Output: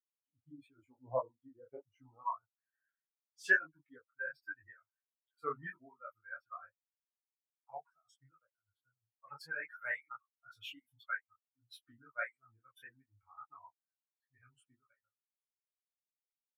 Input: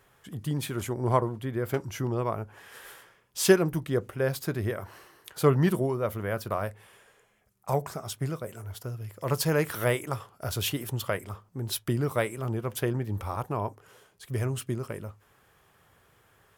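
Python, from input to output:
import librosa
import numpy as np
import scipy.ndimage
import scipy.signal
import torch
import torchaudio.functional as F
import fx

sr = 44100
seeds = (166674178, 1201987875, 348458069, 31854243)

y = fx.bin_expand(x, sr, power=3.0)
y = fx.filter_sweep_bandpass(y, sr, from_hz=560.0, to_hz=1600.0, start_s=1.82, end_s=2.71, q=6.1)
y = y + 0.84 * np.pad(y, (int(7.1 * sr / 1000.0), 0))[:len(y)]
y = fx.detune_double(y, sr, cents=53)
y = y * librosa.db_to_amplitude(9.5)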